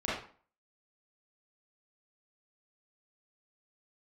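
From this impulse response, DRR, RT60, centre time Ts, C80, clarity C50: −9.0 dB, 0.45 s, 54 ms, 7.0 dB, 0.5 dB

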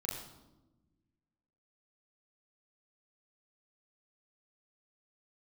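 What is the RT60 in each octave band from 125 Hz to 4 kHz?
1.9, 1.8, 1.2, 0.90, 0.70, 0.70 seconds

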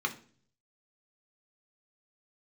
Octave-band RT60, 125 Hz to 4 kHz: 0.90, 0.65, 0.50, 0.40, 0.40, 0.45 seconds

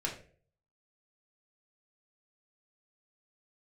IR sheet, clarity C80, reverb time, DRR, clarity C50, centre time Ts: 13.0 dB, 0.45 s, −2.5 dB, 8.5 dB, 23 ms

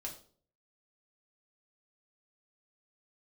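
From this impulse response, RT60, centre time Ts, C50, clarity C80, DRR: 0.50 s, 18 ms, 10.0 dB, 14.0 dB, −1.5 dB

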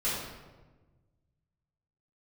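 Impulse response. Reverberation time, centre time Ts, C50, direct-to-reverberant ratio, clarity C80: 1.3 s, 77 ms, −0.5 dB, −11.0 dB, 2.5 dB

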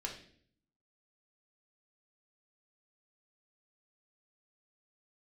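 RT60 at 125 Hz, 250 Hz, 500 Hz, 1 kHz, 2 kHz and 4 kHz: 0.95, 0.90, 0.65, 0.45, 0.55, 0.55 seconds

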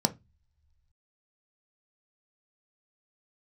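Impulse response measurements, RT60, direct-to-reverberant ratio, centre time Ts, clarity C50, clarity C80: non-exponential decay, 6.5 dB, 4 ms, 20.0 dB, 29.0 dB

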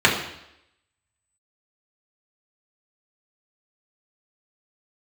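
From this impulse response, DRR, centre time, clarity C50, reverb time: −4.5 dB, 31 ms, 6.5 dB, 0.80 s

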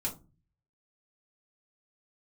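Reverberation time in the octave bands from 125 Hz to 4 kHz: 0.75, 0.50, 0.35, 0.25, 0.20, 0.15 seconds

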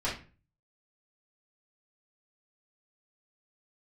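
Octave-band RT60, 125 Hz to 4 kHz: 0.65, 0.45, 0.40, 0.35, 0.35, 0.30 seconds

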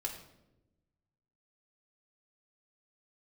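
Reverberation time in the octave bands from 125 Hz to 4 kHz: 1.8, 1.4, 1.1, 0.75, 0.65, 0.60 seconds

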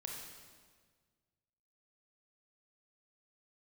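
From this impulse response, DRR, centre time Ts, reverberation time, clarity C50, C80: −0.5 dB, 69 ms, 1.6 s, 1.0 dB, 3.5 dB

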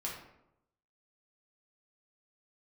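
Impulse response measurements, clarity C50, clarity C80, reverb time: 3.5 dB, 7.0 dB, 0.85 s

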